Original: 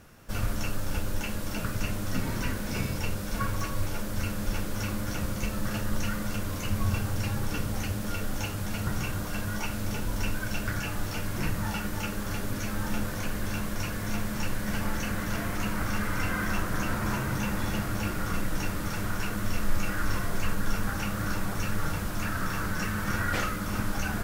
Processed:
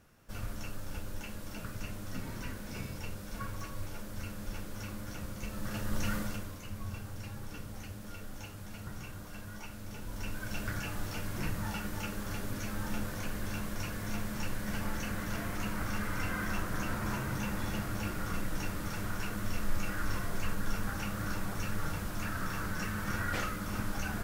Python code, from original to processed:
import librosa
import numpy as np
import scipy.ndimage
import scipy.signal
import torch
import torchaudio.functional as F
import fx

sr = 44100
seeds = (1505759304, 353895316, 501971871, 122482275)

y = fx.gain(x, sr, db=fx.line((5.38, -10.0), (6.16, -2.0), (6.59, -13.0), (9.87, -13.0), (10.61, -5.5)))